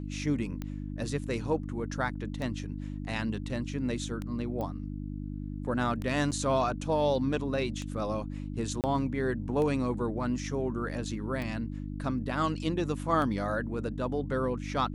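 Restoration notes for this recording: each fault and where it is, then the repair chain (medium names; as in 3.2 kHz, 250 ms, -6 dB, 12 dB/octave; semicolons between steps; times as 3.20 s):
hum 50 Hz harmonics 6 -37 dBFS
tick 33 1/3 rpm -23 dBFS
4.61 s: pop -24 dBFS
6.31–6.32 s: dropout 7.9 ms
8.81–8.84 s: dropout 28 ms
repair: de-click; de-hum 50 Hz, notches 6; interpolate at 6.31 s, 7.9 ms; interpolate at 8.81 s, 28 ms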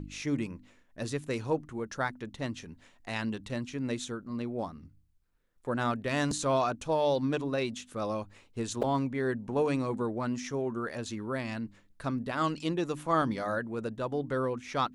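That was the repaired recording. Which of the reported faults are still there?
nothing left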